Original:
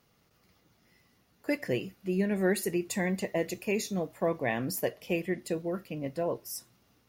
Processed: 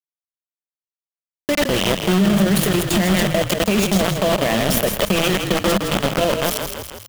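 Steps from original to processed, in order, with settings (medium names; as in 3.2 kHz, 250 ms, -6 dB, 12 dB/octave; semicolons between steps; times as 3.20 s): chunks repeated in reverse 130 ms, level -5 dB; in parallel at -5.5 dB: Schmitt trigger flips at -24.5 dBFS; on the sum: bit crusher 5-bit; peak limiter -25.5 dBFS, peak gain reduction 11.5 dB; graphic EQ with 31 bands 200 Hz +9 dB, 630 Hz +7 dB, 1.25 kHz +3 dB, 3.15 kHz +8 dB; on a send: frequency-shifting echo 163 ms, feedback 33%, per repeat -36 Hz, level -12 dB; on the sum: level flattener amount 50%; trim +9 dB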